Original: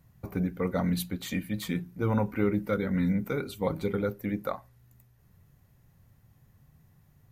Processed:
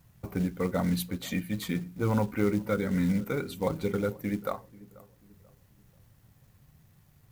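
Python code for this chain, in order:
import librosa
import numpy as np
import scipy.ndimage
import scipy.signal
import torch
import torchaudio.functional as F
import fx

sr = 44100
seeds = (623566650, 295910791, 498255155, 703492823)

y = fx.quant_companded(x, sr, bits=6)
y = fx.echo_filtered(y, sr, ms=487, feedback_pct=41, hz=1000.0, wet_db=-20.5)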